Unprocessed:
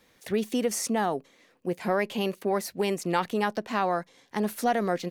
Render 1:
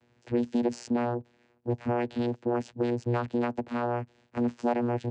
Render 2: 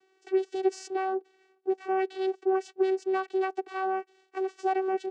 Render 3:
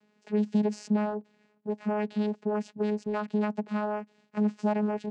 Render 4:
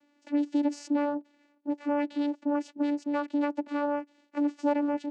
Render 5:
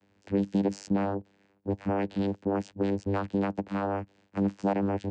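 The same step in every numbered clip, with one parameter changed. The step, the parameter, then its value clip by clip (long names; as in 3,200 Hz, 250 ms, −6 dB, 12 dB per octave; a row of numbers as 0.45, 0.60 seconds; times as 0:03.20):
channel vocoder, frequency: 120, 380, 210, 290, 99 Hertz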